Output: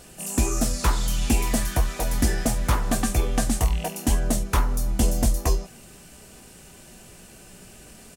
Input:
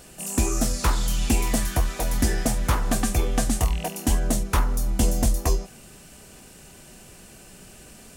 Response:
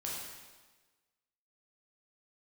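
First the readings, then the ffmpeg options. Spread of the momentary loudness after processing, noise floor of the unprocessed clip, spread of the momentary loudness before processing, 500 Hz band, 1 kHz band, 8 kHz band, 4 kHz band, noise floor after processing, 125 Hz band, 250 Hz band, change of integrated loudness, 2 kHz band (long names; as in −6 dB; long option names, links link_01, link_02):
3 LU, −48 dBFS, 3 LU, 0.0 dB, 0.0 dB, −0.5 dB, 0.0 dB, −48 dBFS, +0.5 dB, 0.0 dB, 0.0 dB, 0.0 dB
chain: -filter_complex "[0:a]asplit=2[link_01][link_02];[link_02]adelay=17,volume=-13.5dB[link_03];[link_01][link_03]amix=inputs=2:normalize=0" -ar 48000 -c:a libvorbis -b:a 96k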